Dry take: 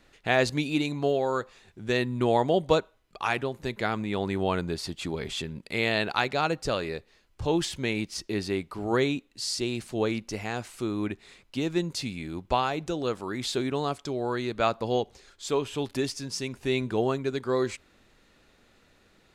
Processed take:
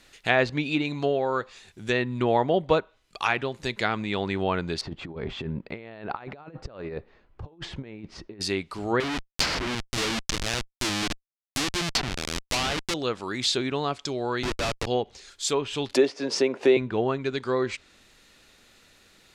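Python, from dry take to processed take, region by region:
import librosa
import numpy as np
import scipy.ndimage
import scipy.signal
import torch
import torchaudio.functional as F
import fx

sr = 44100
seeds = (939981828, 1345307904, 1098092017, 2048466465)

y = fx.chain(x, sr, fx.lowpass(hz=1100.0, slope=12),
    fx.over_compress(threshold_db=-36.0, ratio=-0.5), at=(4.81, 8.41))
y = fx.chain(y, sr, fx.cvsd(bps=64000),
    fx.schmitt(flips_db=-30.5),
    fx.high_shelf(hz=2200.0, db=10.5), at=(9.0, 12.94))
y = fx.chain(y, sr, fx.highpass(hz=280.0, slope=24),
    fx.schmitt(flips_db=-30.0), at=(14.43, 14.87))
y = fx.chain(y, sr, fx.highpass(hz=270.0, slope=12),
    fx.peak_eq(hz=510.0, db=14.0, octaves=1.6),
    fx.band_squash(depth_pct=70), at=(15.94, 16.77))
y = fx.env_lowpass_down(y, sr, base_hz=2000.0, full_db=-22.0)
y = fx.high_shelf(y, sr, hz=2100.0, db=11.5)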